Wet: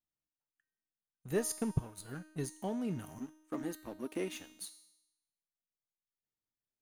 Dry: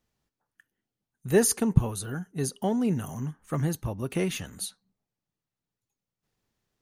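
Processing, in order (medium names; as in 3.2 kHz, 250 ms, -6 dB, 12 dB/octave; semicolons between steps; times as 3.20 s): 1.34–2.56 s: transient shaper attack +4 dB, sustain -6 dB; 3.18–4.61 s: resonant low shelf 190 Hz -10 dB, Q 3; waveshaping leveller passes 2; feedback comb 310 Hz, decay 0.87 s, mix 80%; trim -5 dB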